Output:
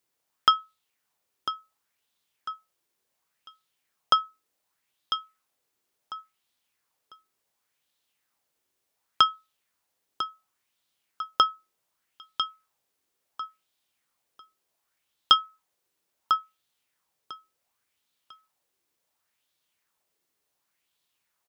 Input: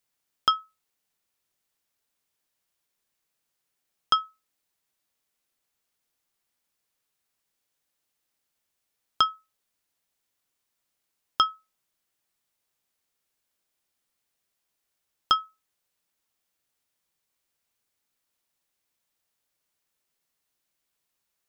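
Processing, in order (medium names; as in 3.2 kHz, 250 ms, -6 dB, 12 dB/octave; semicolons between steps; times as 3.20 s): high-pass 42 Hz; peaking EQ 1 kHz +2 dB; on a send: feedback delay 998 ms, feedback 28%, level -10 dB; on the sum: sweeping bell 0.69 Hz 340–3700 Hz +9 dB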